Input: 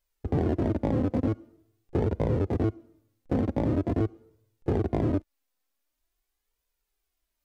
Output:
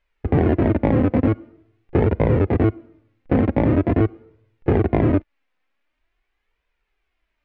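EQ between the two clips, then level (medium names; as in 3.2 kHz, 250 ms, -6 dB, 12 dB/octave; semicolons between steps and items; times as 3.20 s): resonant low-pass 2.3 kHz, resonance Q 1.9; +8.5 dB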